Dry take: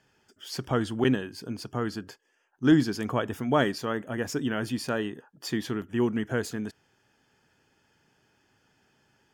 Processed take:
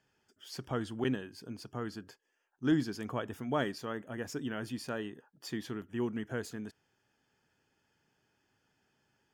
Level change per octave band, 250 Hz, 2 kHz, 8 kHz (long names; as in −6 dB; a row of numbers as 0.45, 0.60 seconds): −8.5, −8.5, −8.5 decibels